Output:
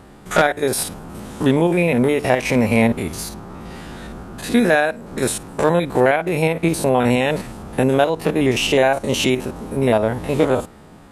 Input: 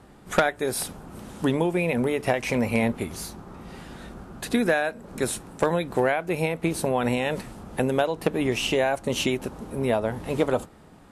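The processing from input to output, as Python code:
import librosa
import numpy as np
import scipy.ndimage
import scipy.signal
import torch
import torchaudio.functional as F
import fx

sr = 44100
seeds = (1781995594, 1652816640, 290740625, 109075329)

y = fx.spec_steps(x, sr, hold_ms=50)
y = y * 10.0 ** (8.5 / 20.0)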